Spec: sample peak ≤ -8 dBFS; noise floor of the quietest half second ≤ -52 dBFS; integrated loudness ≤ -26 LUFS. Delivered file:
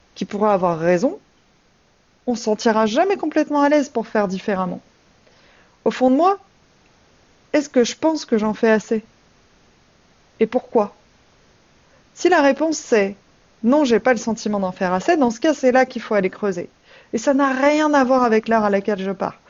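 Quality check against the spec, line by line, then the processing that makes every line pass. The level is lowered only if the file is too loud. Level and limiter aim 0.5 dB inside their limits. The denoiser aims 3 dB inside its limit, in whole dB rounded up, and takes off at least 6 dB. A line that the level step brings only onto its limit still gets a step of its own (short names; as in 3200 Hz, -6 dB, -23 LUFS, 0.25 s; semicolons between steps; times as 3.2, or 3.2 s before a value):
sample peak -5.0 dBFS: fail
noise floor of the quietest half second -58 dBFS: OK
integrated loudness -19.0 LUFS: fail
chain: gain -7.5 dB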